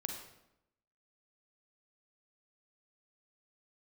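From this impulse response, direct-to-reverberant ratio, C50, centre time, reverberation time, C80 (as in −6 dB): 2.5 dB, 4.0 dB, 34 ms, 0.85 s, 7.0 dB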